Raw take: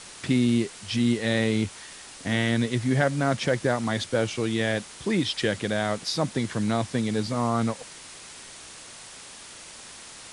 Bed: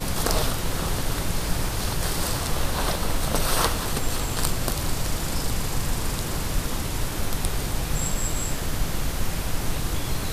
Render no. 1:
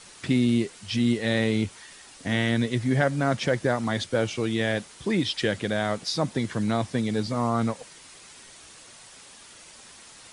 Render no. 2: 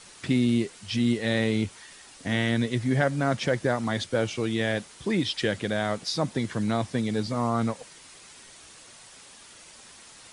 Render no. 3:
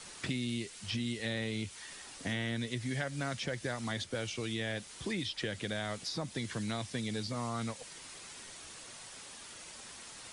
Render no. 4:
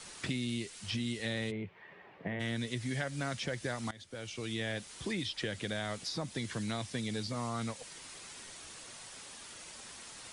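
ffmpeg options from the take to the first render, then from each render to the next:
-af "afftdn=nr=6:nf=-44"
-af "volume=-1dB"
-filter_complex "[0:a]acrossover=split=88|2000[a][b][c];[a]acompressor=threshold=-48dB:ratio=4[d];[b]acompressor=threshold=-38dB:ratio=4[e];[c]acompressor=threshold=-39dB:ratio=4[f];[d][e][f]amix=inputs=3:normalize=0"
-filter_complex "[0:a]asplit=3[a][b][c];[a]afade=t=out:st=1.5:d=0.02[d];[b]highpass=120,equalizer=f=170:t=q:w=4:g=7,equalizer=f=260:t=q:w=4:g=-9,equalizer=f=410:t=q:w=4:g=5,equalizer=f=610:t=q:w=4:g=3,equalizer=f=1.4k:t=q:w=4:g=-8,lowpass=f=2.1k:w=0.5412,lowpass=f=2.1k:w=1.3066,afade=t=in:st=1.5:d=0.02,afade=t=out:st=2.39:d=0.02[e];[c]afade=t=in:st=2.39:d=0.02[f];[d][e][f]amix=inputs=3:normalize=0,asplit=2[g][h];[g]atrim=end=3.91,asetpts=PTS-STARTPTS,afade=t=out:st=3.906:d=0.004:c=hsin:silence=0.1[i];[h]atrim=start=3.91,asetpts=PTS-STARTPTS,afade=t=in:d=0.68:silence=0.1[j];[i][j]concat=n=2:v=0:a=1"

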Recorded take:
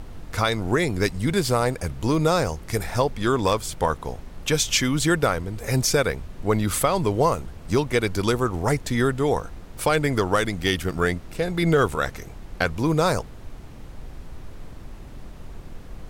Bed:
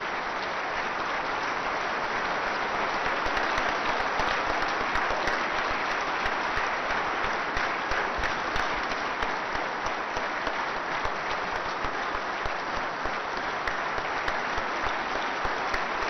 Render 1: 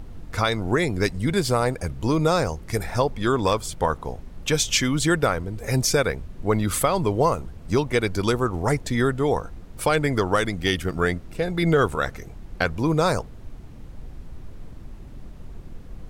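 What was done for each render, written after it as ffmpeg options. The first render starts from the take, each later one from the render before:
-af "afftdn=nr=6:nf=-41"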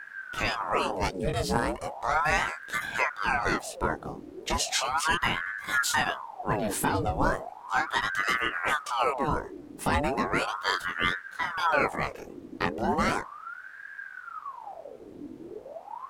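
-af "flanger=delay=19.5:depth=5.5:speed=1.6,aeval=exprs='val(0)*sin(2*PI*960*n/s+960*0.7/0.36*sin(2*PI*0.36*n/s))':c=same"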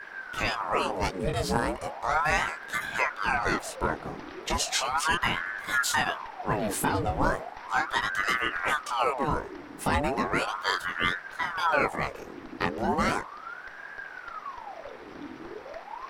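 -filter_complex "[1:a]volume=-18.5dB[a];[0:a][a]amix=inputs=2:normalize=0"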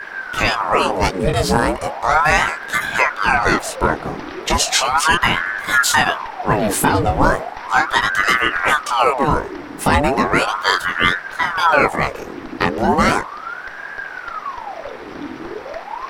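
-af "volume=11.5dB,alimiter=limit=-1dB:level=0:latency=1"

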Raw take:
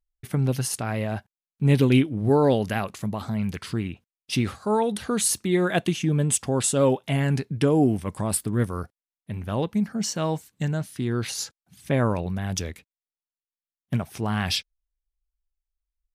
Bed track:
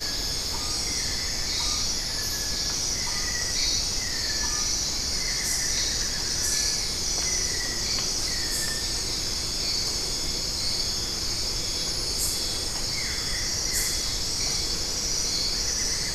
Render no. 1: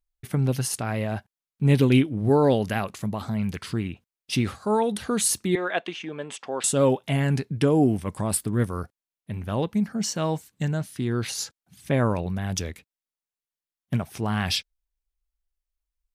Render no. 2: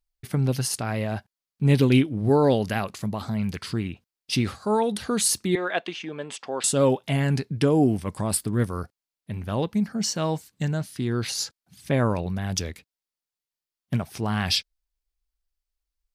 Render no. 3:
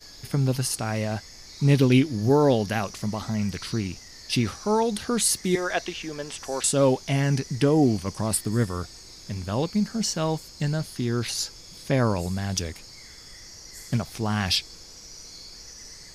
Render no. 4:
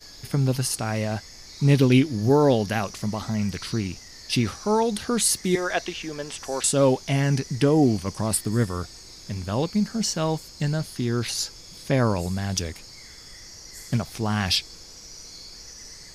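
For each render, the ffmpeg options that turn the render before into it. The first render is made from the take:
-filter_complex "[0:a]asettb=1/sr,asplit=3[a][b][c];[a]atrim=end=5.554[d];[b]atrim=start=5.55:end=6.64,asetpts=PTS-STARTPTS,afade=t=in:d=0.004:c=qsin,afade=t=out:st=1.086:d=0.004:c=qsin,highpass=510,lowpass=3.3k[e];[c]atrim=start=6.636[f];[d][e]acrossfade=d=0.004:c1=hsin:c2=qsin[g];[g][f]acrossfade=d=0.004:c1=qsin:c2=hsin"
-af "equalizer=f=4.7k:t=o:w=0.48:g=5"
-filter_complex "[1:a]volume=-17dB[a];[0:a][a]amix=inputs=2:normalize=0"
-af "volume=1dB"

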